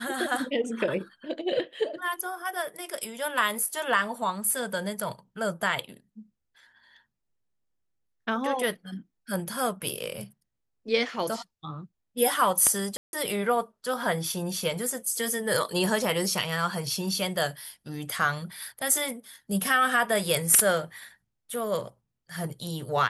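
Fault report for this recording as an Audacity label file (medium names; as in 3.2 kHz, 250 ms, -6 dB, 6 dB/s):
12.970000	13.130000	dropout 161 ms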